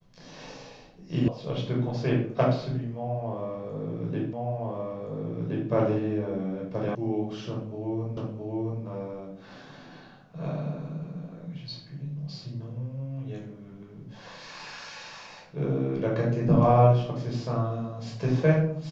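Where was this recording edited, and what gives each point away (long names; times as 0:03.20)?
0:01.28: cut off before it has died away
0:04.33: the same again, the last 1.37 s
0:06.95: cut off before it has died away
0:08.17: the same again, the last 0.67 s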